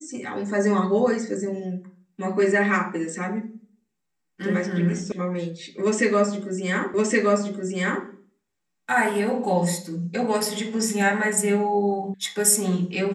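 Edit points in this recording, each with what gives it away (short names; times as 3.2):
5.12 sound cut off
6.94 repeat of the last 1.12 s
12.14 sound cut off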